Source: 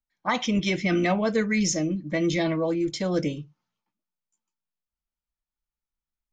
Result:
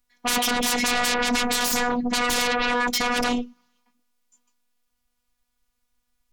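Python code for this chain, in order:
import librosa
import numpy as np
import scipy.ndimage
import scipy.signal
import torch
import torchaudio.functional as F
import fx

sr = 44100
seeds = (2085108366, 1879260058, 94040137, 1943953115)

y = fx.fold_sine(x, sr, drive_db=18, ceiling_db=-13.5)
y = fx.robotise(y, sr, hz=243.0)
y = y * librosa.db_to_amplitude(-4.0)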